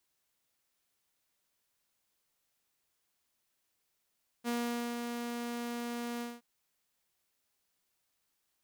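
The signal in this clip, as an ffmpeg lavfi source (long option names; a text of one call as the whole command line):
ffmpeg -f lavfi -i "aevalsrc='0.0376*(2*mod(238*t,1)-1)':duration=1.971:sample_rate=44100,afade=type=in:duration=0.042,afade=type=out:start_time=0.042:duration=0.474:silence=0.562,afade=type=out:start_time=1.77:duration=0.201" out.wav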